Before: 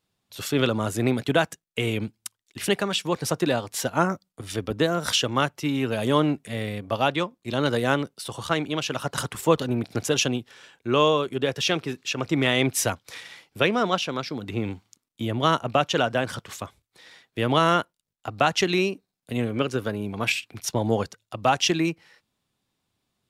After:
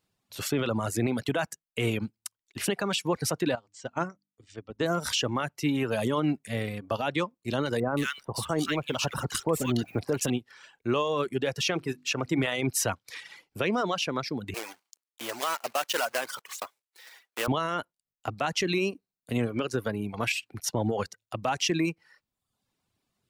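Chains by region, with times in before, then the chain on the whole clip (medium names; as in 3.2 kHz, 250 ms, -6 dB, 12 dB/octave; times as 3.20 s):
3.55–4.86 s: steep low-pass 8.4 kHz 72 dB/octave + hum notches 50/100/150/200/250/300 Hz + upward expansion 2.5:1, over -29 dBFS
7.80–10.30 s: companding laws mixed up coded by mu + bands offset in time lows, highs 170 ms, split 1.5 kHz
11.65–12.43 s: high-pass 47 Hz + hum notches 50/100/150/200/250/300/350 Hz
14.54–17.48 s: block-companded coder 3-bit + high-pass 590 Hz
whole clip: peaking EQ 3.5 kHz -4 dB 0.27 oct; peak limiter -16.5 dBFS; reverb removal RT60 0.73 s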